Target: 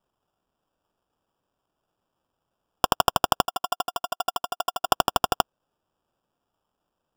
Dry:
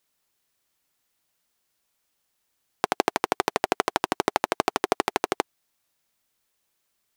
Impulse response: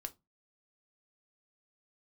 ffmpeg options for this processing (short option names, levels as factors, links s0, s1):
-filter_complex "[0:a]highpass=f=170:t=q:w=0.5412,highpass=f=170:t=q:w=1.307,lowpass=f=3300:t=q:w=0.5176,lowpass=f=3300:t=q:w=0.7071,lowpass=f=3300:t=q:w=1.932,afreqshift=350,asettb=1/sr,asplit=3[s0][s1][s2];[s0]atrim=end=3.454[s3];[s1]atrim=start=3.45:end=4.85,asetpts=PTS-STARTPTS,afade=t=in:d=0.004:c=qsin,afade=t=out:st=1.396:d=0.004:c=qsin,asplit=3[s4][s5][s6];[s4]bandpass=f=730:t=q:w=8,volume=1[s7];[s5]bandpass=f=1090:t=q:w=8,volume=0.501[s8];[s6]bandpass=f=2440:t=q:w=8,volume=0.355[s9];[s7][s8][s9]amix=inputs=3:normalize=0[s10];[s2]atrim=start=4.846[s11];[s3][s10]acrossfade=d=0.004:c1=hsin:c2=qsin[s12];[s12][s11]acrossfade=d=0.004:c1=qsin:c2=hsin,acrusher=samples=21:mix=1:aa=0.000001,volume=1.41"